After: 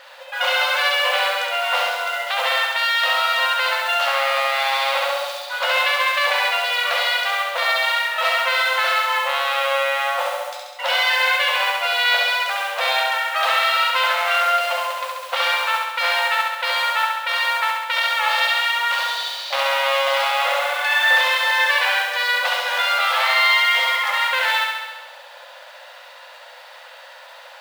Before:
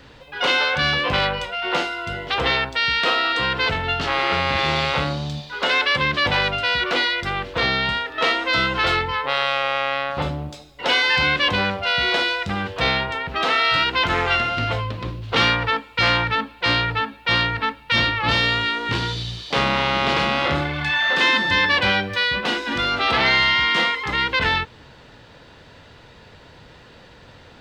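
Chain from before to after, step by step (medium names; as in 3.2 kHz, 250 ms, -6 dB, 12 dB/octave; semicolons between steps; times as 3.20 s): modulation noise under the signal 16 dB; treble shelf 6.3 kHz -6.5 dB; in parallel at -1 dB: compression, threshold -29 dBFS, peak gain reduction 14 dB; on the sum: peak limiter -10.5 dBFS, peak gain reduction 6.5 dB; brick-wall FIR high-pass 500 Hz; on a send: flutter echo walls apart 11.6 m, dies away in 1.2 s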